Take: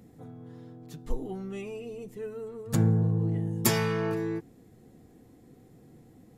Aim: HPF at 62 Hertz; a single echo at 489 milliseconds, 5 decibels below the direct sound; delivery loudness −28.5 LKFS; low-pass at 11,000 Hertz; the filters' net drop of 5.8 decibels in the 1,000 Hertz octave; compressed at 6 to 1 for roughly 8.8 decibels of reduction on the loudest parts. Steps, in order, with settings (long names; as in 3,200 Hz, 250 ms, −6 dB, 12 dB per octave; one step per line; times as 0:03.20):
high-pass filter 62 Hz
low-pass filter 11,000 Hz
parametric band 1,000 Hz −7.5 dB
downward compressor 6 to 1, threshold −28 dBFS
single-tap delay 489 ms −5 dB
level +5.5 dB